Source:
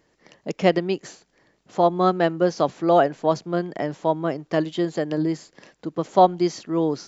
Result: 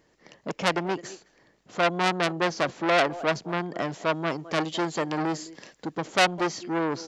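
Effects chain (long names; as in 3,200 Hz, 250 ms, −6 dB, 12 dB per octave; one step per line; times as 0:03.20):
0:03.78–0:06.01: high-shelf EQ 3,500 Hz +7.5 dB
far-end echo of a speakerphone 210 ms, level −19 dB
saturating transformer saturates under 3,500 Hz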